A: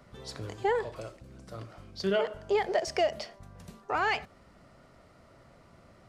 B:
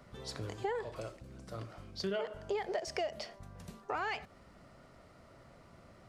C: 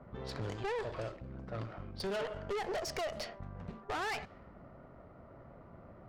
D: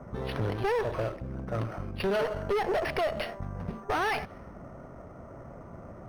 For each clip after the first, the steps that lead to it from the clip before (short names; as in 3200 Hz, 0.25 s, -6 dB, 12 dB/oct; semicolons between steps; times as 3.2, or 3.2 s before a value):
compressor 3:1, threshold -34 dBFS, peak gain reduction 9 dB; gain -1 dB
low-pass opened by the level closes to 970 Hz, open at -32.5 dBFS; tube stage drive 41 dB, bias 0.6; gain +7.5 dB
decimation joined by straight lines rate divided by 6×; gain +9 dB